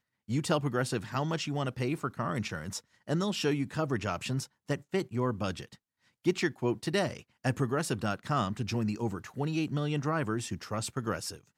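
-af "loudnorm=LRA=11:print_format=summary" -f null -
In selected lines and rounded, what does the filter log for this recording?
Input Integrated:    -32.8 LUFS
Input True Peak:     -14.4 dBTP
Input LRA:             1.1 LU
Input Threshold:     -42.9 LUFS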